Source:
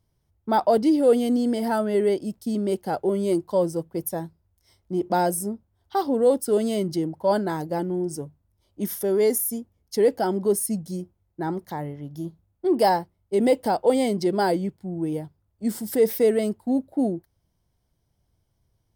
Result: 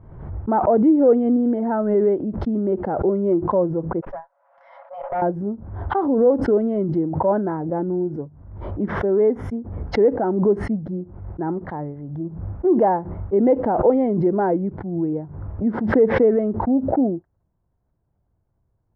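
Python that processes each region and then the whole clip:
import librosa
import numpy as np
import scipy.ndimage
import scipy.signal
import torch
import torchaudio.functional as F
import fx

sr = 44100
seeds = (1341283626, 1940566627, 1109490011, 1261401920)

y = fx.chain(x, sr, fx.brickwall_highpass(low_hz=510.0),
    fx.comb(ms=7.2, depth=0.49),
    fx.tube_stage(drive_db=26.0, bias=0.35), at=(4.01, 5.22))
y = scipy.signal.sosfilt(scipy.signal.butter(4, 1500.0, 'lowpass', fs=sr, output='sos'), y)
y = fx.dynamic_eq(y, sr, hz=290.0, q=0.75, threshold_db=-34.0, ratio=4.0, max_db=4)
y = fx.pre_swell(y, sr, db_per_s=55.0)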